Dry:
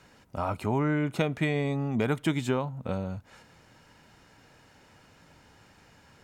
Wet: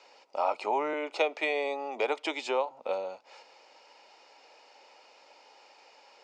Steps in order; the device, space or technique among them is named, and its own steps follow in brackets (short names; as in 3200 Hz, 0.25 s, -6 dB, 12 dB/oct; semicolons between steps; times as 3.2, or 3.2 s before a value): 0.93–2.71 HPF 250 Hz 24 dB/oct; phone speaker on a table (speaker cabinet 410–6700 Hz, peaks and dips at 550 Hz +5 dB, 840 Hz +7 dB, 1600 Hz -9 dB, 2500 Hz +6 dB, 4800 Hz +8 dB)